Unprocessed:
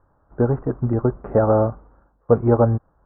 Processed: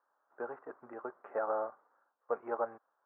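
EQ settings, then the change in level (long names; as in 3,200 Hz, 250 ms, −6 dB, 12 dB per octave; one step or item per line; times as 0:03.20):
high-pass filter 420 Hz 12 dB per octave
high-frequency loss of the air 260 metres
first difference
+7.0 dB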